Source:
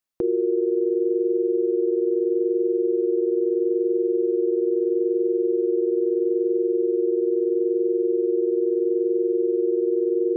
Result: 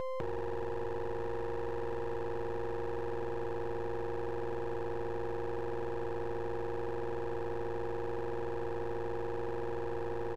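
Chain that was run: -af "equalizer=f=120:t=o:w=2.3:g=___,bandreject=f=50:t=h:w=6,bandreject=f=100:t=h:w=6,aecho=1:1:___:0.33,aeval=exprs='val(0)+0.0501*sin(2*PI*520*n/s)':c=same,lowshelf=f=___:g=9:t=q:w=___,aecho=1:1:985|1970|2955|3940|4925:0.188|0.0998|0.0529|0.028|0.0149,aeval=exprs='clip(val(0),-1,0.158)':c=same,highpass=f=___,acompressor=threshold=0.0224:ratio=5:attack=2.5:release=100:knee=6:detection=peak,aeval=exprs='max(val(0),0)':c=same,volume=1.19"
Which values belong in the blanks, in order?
12, 4.3, 170, 1.5, 58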